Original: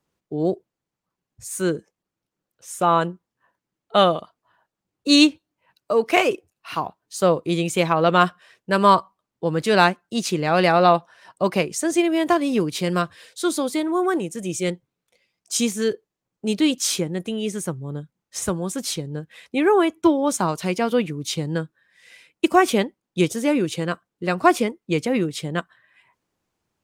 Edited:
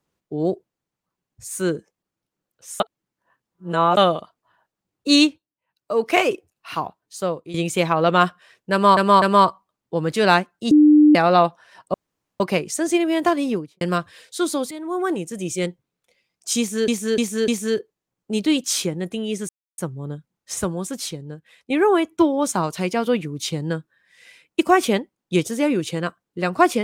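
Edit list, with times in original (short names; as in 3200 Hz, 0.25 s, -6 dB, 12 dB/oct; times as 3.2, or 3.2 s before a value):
2.8–3.97 reverse
5.17–6.03 dip -15.5 dB, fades 0.31 s
6.81–7.54 fade out linear, to -14 dB
8.72–8.97 loop, 3 plays
10.21–10.65 bleep 300 Hz -8 dBFS
11.44 insert room tone 0.46 s
12.44–12.85 studio fade out
13.75–14.18 fade in, from -13.5 dB
15.62–15.92 loop, 4 plays
17.63 insert silence 0.29 s
18.55–19.55 fade out, to -10.5 dB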